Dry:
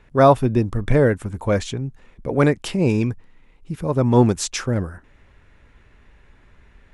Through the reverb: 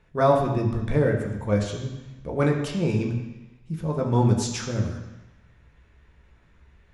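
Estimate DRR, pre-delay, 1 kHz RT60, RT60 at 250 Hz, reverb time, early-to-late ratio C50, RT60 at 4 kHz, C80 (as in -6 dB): 1.0 dB, 3 ms, 1.1 s, 1.0 s, 1.0 s, 6.0 dB, 1.1 s, 7.5 dB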